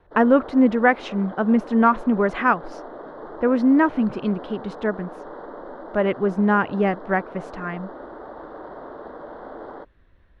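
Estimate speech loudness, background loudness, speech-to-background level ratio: −21.0 LKFS, −38.0 LKFS, 17.0 dB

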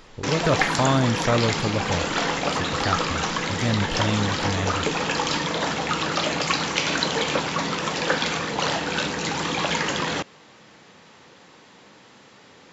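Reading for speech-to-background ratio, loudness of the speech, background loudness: −2.0 dB, −26.0 LKFS, −24.0 LKFS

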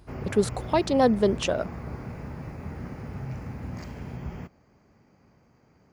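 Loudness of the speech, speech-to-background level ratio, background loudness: −25.0 LKFS, 12.5 dB, −37.5 LKFS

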